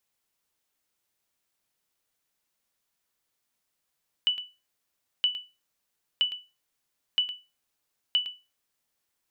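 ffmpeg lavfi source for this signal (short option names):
-f lavfi -i "aevalsrc='0.158*(sin(2*PI*2970*mod(t,0.97))*exp(-6.91*mod(t,0.97)/0.27)+0.251*sin(2*PI*2970*max(mod(t,0.97)-0.11,0))*exp(-6.91*max(mod(t,0.97)-0.11,0)/0.27))':d=4.85:s=44100"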